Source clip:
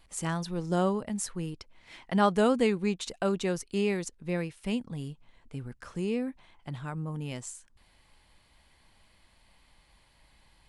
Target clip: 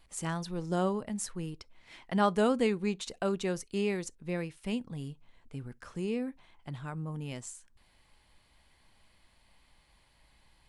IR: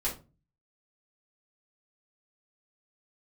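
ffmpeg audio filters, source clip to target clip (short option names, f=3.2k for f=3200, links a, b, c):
-filter_complex "[0:a]asplit=2[a][b];[1:a]atrim=start_sample=2205,atrim=end_sample=3087[c];[b][c]afir=irnorm=-1:irlink=0,volume=-26dB[d];[a][d]amix=inputs=2:normalize=0,volume=-3dB"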